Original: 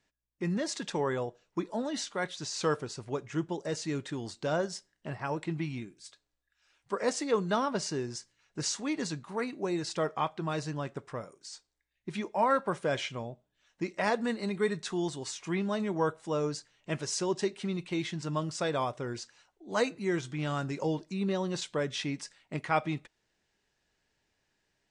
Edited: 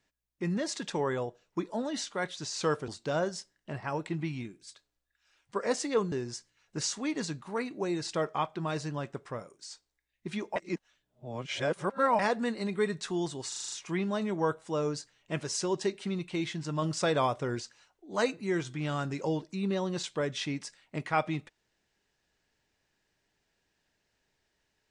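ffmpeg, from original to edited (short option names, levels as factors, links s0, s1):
-filter_complex "[0:a]asplit=13[s0][s1][s2][s3][s4][s5][s6][s7][s8][s9][s10][s11][s12];[s0]atrim=end=2.882[s13];[s1]atrim=start=4.248:end=7.492[s14];[s2]atrim=start=7.938:end=12.382[s15];[s3]atrim=start=12.378:end=14.012,asetpts=PTS-STARTPTS,areverse[s16];[s4]atrim=start=14.008:end=15.342[s17];[s5]atrim=start=15.298:end=15.342[s18];[s6]atrim=start=15.298:end=15.342[s19];[s7]atrim=start=15.298:end=15.342[s20];[s8]atrim=start=15.298:end=15.342[s21];[s9]atrim=start=15.298:end=15.342[s22];[s10]atrim=start=15.298:end=18.402[s23];[s11]atrim=start=18.398:end=19.182,asetpts=PTS-STARTPTS,volume=1.5[s24];[s12]atrim=start=19.178[s25];[s13][s14]acrossfade=d=0.004:c1=hsin:c2=hsin[s26];[s26][s15]acrossfade=d=0.004:c1=hsin:c2=hsin[s27];[s27][s16]acrossfade=d=0.004:c1=hsin:c2=hsin[s28];[s28][s17]acrossfade=d=0.004:c1=hsin:c2=hsin[s29];[s29][s18]acrossfade=d=0.004:c1=hsin:c2=hsin[s30];[s30][s19]acrossfade=d=0.004:c1=hsin:c2=hsin[s31];[s31][s20]acrossfade=d=0.004:c1=hsin:c2=hsin[s32];[s32][s21]acrossfade=d=0.004:c1=hsin:c2=hsin[s33];[s33][s22]acrossfade=d=0.004:c1=hsin:c2=hsin[s34];[s34][s23]acrossfade=d=0.004:c1=hsin:c2=hsin[s35];[s35][s24]acrossfade=d=0.004:c1=hsin:c2=hsin[s36];[s36][s25]acrossfade=d=0.004:c1=hsin:c2=hsin"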